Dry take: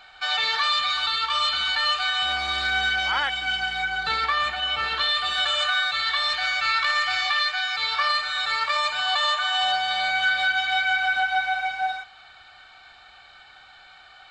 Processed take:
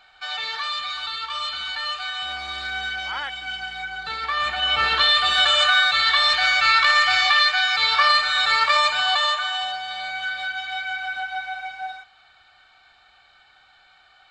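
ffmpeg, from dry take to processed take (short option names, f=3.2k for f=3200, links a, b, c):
-af "volume=6dB,afade=t=in:st=4.2:d=0.62:silence=0.281838,afade=t=out:st=8.74:d=0.98:silence=0.251189"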